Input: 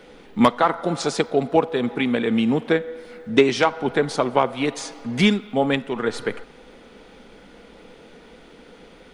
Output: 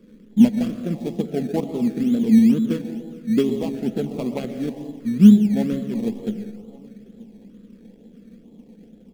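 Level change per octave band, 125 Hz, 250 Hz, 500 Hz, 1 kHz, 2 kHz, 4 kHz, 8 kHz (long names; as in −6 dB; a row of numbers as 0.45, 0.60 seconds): +4.0 dB, +6.0 dB, −7.0 dB, below −15 dB, below −15 dB, below −10 dB, can't be measured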